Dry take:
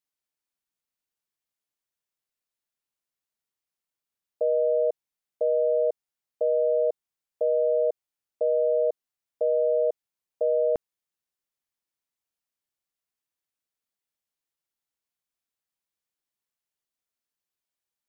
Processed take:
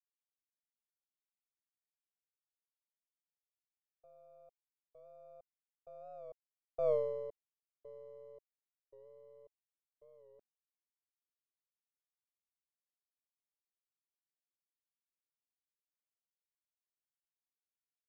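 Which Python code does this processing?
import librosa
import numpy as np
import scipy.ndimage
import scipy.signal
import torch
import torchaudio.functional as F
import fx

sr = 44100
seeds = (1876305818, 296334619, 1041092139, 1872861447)

y = np.where(x < 0.0, 10.0 ** (-3.0 / 20.0) * x, x)
y = fx.doppler_pass(y, sr, speed_mps=29, closest_m=2.1, pass_at_s=6.9)
y = fx.record_warp(y, sr, rpm=45.0, depth_cents=100.0)
y = y * 10.0 ** (-5.0 / 20.0)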